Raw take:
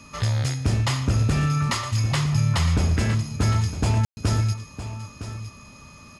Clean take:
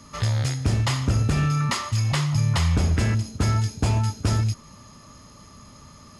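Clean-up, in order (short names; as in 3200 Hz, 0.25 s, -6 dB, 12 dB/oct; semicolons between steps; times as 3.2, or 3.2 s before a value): notch 2500 Hz, Q 30; room tone fill 4.05–4.17; inverse comb 0.961 s -12 dB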